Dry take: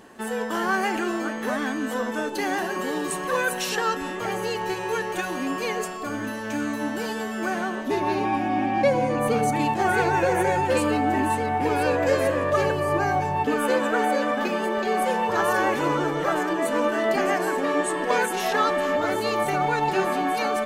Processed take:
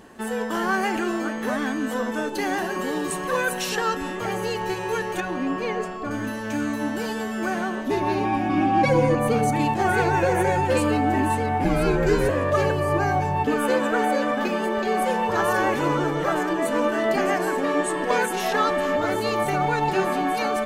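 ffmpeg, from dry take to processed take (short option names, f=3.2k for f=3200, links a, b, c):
-filter_complex "[0:a]asettb=1/sr,asplit=3[a][b][c];[a]atrim=end=5.204[d];[b]atrim=start=5.2:end=6.11,asetpts=PTS-STARTPTS,afade=t=in:d=0.004:c=qsin,afade=t=out:st=0.906:d=0.004:c=qsin,aemphasis=mode=reproduction:type=75fm[e];[c]atrim=start=6.106[f];[d][e]acrossfade=d=0.004:c1=hsin:c2=qsin[g];[g][f]acrossfade=d=0.004:c1=qsin:c2=hsin,asettb=1/sr,asplit=3[h][i][j];[h]atrim=end=8.494[k];[i]atrim=start=8.49:end=9.15,asetpts=PTS-STARTPTS,afade=t=in:d=0.004:c=qsin,afade=t=out:st=0.656:d=0.004:c=qsin,aecho=1:1:6.2:1,atrim=end_sample=29106[l];[j]atrim=start=9.146[m];[k][l]acrossfade=d=0.004:c1=hsin:c2=qsin[n];[n][m]acrossfade=d=0.004:c1=qsin:c2=hsin,asettb=1/sr,asplit=3[o][p][q];[o]atrim=end=11.644[r];[p]atrim=start=11.64:end=12.29,asetpts=PTS-STARTPTS,afade=t=in:d=0.004:c=qsin,afade=t=out:st=0.646:d=0.004:c=qsin,afreqshift=-130[s];[q]atrim=start=12.286[t];[r][s]acrossfade=d=0.004:c1=hsin:c2=qsin[u];[u][t]acrossfade=d=0.004:c1=qsin:c2=hsin,lowshelf=f=140:g=8"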